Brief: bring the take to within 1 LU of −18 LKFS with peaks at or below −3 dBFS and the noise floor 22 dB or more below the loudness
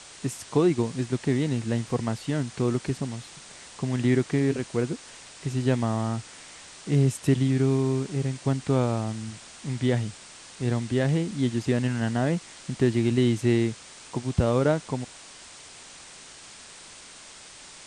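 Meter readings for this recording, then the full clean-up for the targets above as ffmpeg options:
background noise floor −47 dBFS; target noise floor −49 dBFS; integrated loudness −26.5 LKFS; sample peak −8.5 dBFS; target loudness −18.0 LKFS
→ -af "afftdn=noise_reduction=6:noise_floor=-47"
-af "volume=8.5dB,alimiter=limit=-3dB:level=0:latency=1"

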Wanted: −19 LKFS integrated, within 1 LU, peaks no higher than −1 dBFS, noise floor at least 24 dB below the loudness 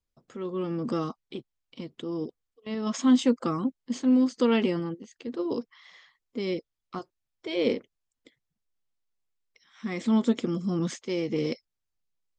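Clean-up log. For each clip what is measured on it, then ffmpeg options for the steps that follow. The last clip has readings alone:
integrated loudness −28.5 LKFS; sample peak −11.5 dBFS; target loudness −19.0 LKFS
→ -af "volume=9.5dB"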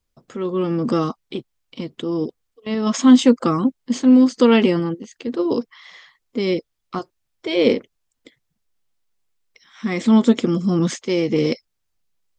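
integrated loudness −19.0 LKFS; sample peak −2.0 dBFS; background noise floor −75 dBFS

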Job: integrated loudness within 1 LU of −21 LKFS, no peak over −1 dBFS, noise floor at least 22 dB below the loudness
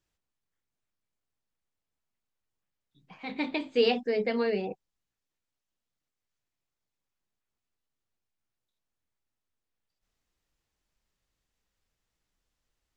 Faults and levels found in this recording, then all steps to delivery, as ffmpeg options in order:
integrated loudness −29.0 LKFS; sample peak −12.5 dBFS; target loudness −21.0 LKFS
→ -af "volume=8dB"

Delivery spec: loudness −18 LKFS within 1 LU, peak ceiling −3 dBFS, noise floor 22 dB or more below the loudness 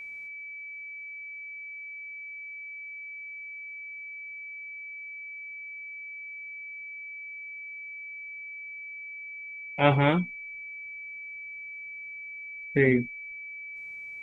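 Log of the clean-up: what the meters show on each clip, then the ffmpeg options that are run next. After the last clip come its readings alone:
interfering tone 2,300 Hz; level of the tone −38 dBFS; integrated loudness −33.0 LKFS; sample peak −5.0 dBFS; target loudness −18.0 LKFS
→ -af "bandreject=frequency=2300:width=30"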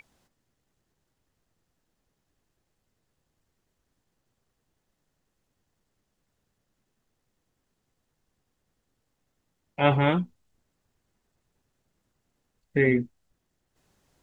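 interfering tone none found; integrated loudness −24.5 LKFS; sample peak −5.5 dBFS; target loudness −18.0 LKFS
→ -af "volume=6.5dB,alimiter=limit=-3dB:level=0:latency=1"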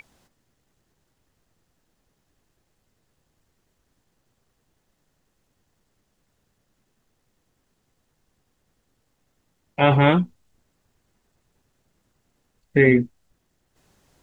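integrated loudness −18.5 LKFS; sample peak −3.0 dBFS; background noise floor −72 dBFS

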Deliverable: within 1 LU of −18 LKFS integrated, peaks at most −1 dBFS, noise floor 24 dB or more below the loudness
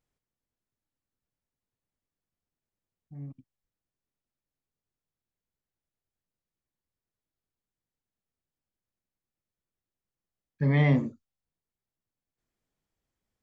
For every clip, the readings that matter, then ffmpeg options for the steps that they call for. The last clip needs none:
integrated loudness −25.0 LKFS; sample peak −12.0 dBFS; target loudness −18.0 LKFS
→ -af "volume=7dB"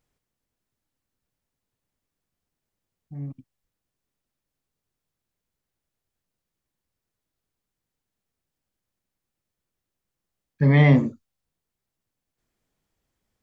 integrated loudness −18.0 LKFS; sample peak −5.0 dBFS; background noise floor −85 dBFS

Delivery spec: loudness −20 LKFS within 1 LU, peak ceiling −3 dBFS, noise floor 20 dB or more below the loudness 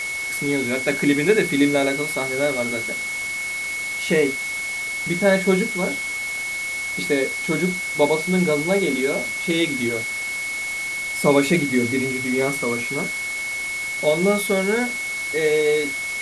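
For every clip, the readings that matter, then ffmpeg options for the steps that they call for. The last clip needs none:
interfering tone 2,200 Hz; level of the tone −25 dBFS; background noise floor −27 dBFS; target noise floor −41 dBFS; integrated loudness −21.0 LKFS; sample peak −3.0 dBFS; target loudness −20.0 LKFS
→ -af "bandreject=frequency=2200:width=30"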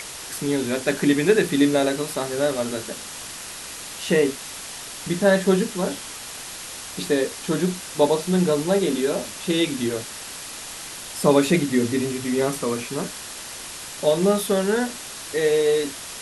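interfering tone none found; background noise floor −36 dBFS; target noise floor −44 dBFS
→ -af "afftdn=noise_reduction=8:noise_floor=-36"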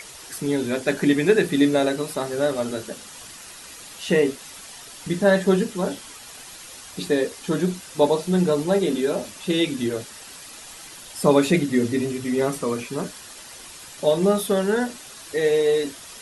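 background noise floor −42 dBFS; target noise floor −43 dBFS
→ -af "afftdn=noise_reduction=6:noise_floor=-42"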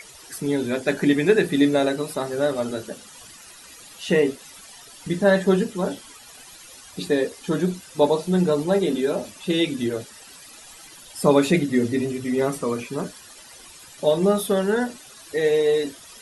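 background noise floor −45 dBFS; integrated loudness −22.5 LKFS; sample peak −3.5 dBFS; target loudness −20.0 LKFS
→ -af "volume=2.5dB,alimiter=limit=-3dB:level=0:latency=1"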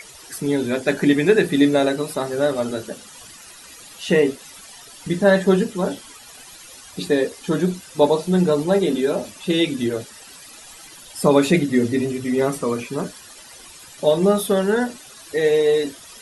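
integrated loudness −20.0 LKFS; sample peak −3.0 dBFS; background noise floor −43 dBFS

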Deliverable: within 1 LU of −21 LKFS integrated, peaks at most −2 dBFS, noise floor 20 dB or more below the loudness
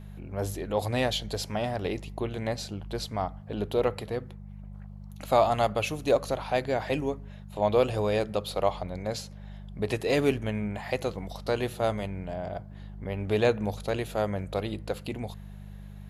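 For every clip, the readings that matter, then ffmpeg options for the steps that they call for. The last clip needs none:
mains hum 50 Hz; hum harmonics up to 200 Hz; level of the hum −41 dBFS; integrated loudness −29.5 LKFS; sample peak −9.0 dBFS; target loudness −21.0 LKFS
→ -af "bandreject=frequency=50:width_type=h:width=4,bandreject=frequency=100:width_type=h:width=4,bandreject=frequency=150:width_type=h:width=4,bandreject=frequency=200:width_type=h:width=4"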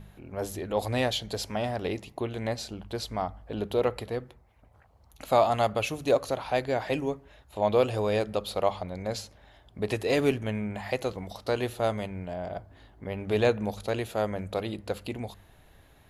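mains hum none found; integrated loudness −30.0 LKFS; sample peak −9.0 dBFS; target loudness −21.0 LKFS
→ -af "volume=9dB,alimiter=limit=-2dB:level=0:latency=1"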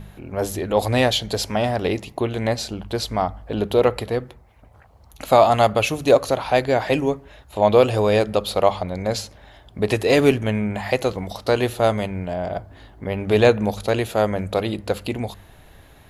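integrated loudness −21.0 LKFS; sample peak −2.0 dBFS; background noise floor −49 dBFS

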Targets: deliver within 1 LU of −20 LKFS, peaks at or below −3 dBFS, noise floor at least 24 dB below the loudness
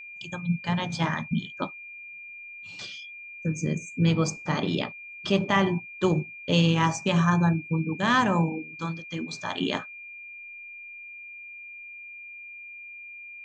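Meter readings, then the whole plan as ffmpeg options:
interfering tone 2,400 Hz; level of the tone −40 dBFS; integrated loudness −26.5 LKFS; sample peak −8.5 dBFS; target loudness −20.0 LKFS
→ -af "bandreject=frequency=2400:width=30"
-af "volume=6.5dB,alimiter=limit=-3dB:level=0:latency=1"

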